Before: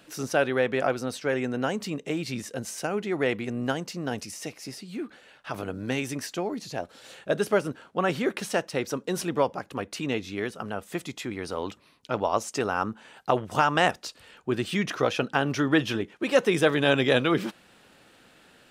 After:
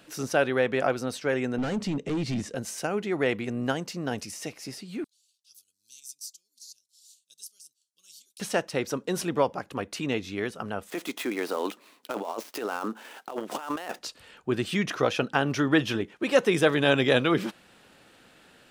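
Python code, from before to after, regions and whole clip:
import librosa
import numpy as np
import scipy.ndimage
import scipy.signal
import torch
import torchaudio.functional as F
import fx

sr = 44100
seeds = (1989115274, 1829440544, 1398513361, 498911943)

y = fx.chain(x, sr, fx.clip_hard(threshold_db=-31.0),
    fx.lowpass(hz=8100.0, slope=12),
    fx.low_shelf(hz=410.0, db=9.0), at=(1.58, 2.55))
y = fx.chain(y, sr, fx.cheby2_highpass(hz=2000.0, order=4, stop_db=50),
    fx.transient(attack_db=-1, sustain_db=-7), at=(5.04, 8.4))
y = fx.chain(y, sr, fx.dead_time(dead_ms=0.075),
    fx.highpass(hz=250.0, slope=24),
    fx.over_compress(threshold_db=-32.0, ratio=-1.0), at=(10.9, 13.99))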